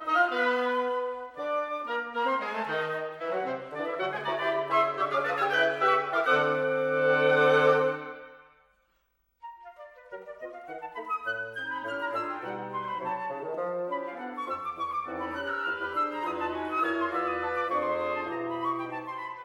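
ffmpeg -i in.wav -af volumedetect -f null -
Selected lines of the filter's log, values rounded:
mean_volume: -29.6 dB
max_volume: -10.3 dB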